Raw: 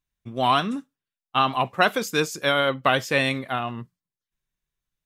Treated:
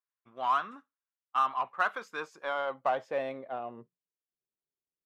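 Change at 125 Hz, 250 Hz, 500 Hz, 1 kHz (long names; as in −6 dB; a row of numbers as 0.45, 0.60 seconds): −26.0, −19.5, −10.0, −7.0 decibels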